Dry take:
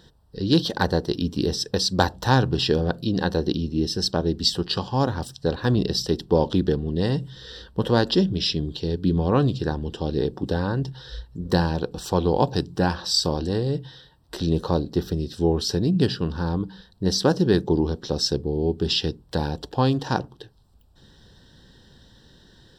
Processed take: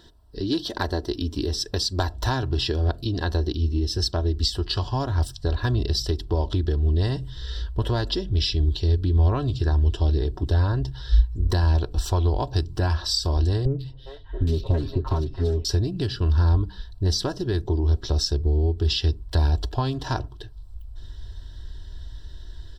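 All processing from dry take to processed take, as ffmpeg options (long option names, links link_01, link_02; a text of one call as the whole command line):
ffmpeg -i in.wav -filter_complex "[0:a]asettb=1/sr,asplit=3[link_01][link_02][link_03];[link_01]atrim=end=13.654[link_04];[link_02]atrim=start=13.65:end=15.65,asetpts=PTS-STARTPTS,afade=type=in:duration=0.004:curve=qsin,afade=type=out:start_time=1.996:duration=0.004:curve=qsin,aecho=1:1:7.5:0.94,atrim=end_sample=88200,acrossover=split=660|2500[link_05][link_06][link_07];[link_07]adelay=140[link_08];[link_06]adelay=410[link_09];[link_05][link_09][link_08]amix=inputs=3:normalize=0,atrim=end_sample=88200,adynamicsmooth=sensitivity=3.5:basefreq=2800[link_10];[link_03]atrim=start=15.646[link_11];[link_04][link_10]acrossfade=duration=0.004:curve1=hsin:curve2=qsin[link_12];[link_12][link_11]acrossfade=duration=0.004:curve1=qsin:curve2=hsin,aecho=1:1:3:0.64,acompressor=threshold=-23dB:ratio=3,asubboost=boost=11.5:cutoff=69" out.wav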